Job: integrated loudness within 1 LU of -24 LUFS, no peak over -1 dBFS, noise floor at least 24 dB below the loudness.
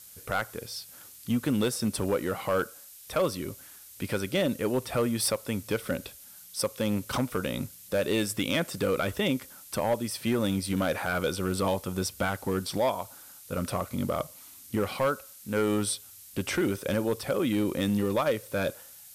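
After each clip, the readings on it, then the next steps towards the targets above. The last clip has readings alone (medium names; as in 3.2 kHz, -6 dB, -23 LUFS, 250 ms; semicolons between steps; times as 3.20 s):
clipped samples 1.0%; clipping level -19.5 dBFS; noise floor -50 dBFS; noise floor target -54 dBFS; loudness -29.5 LUFS; peak level -19.5 dBFS; loudness target -24.0 LUFS
-> clip repair -19.5 dBFS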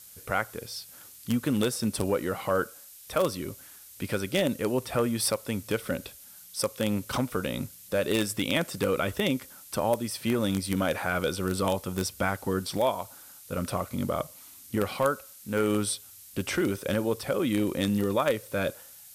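clipped samples 0.0%; noise floor -50 dBFS; noise floor target -53 dBFS
-> noise print and reduce 6 dB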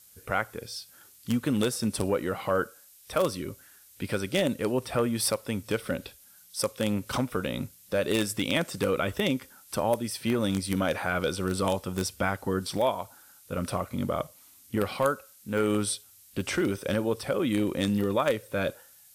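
noise floor -56 dBFS; loudness -29.0 LUFS; peak level -10.5 dBFS; loudness target -24.0 LUFS
-> trim +5 dB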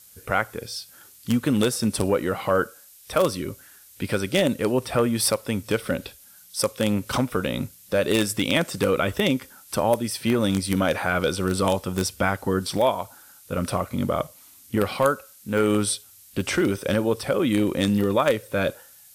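loudness -24.0 LUFS; peak level -5.5 dBFS; noise floor -51 dBFS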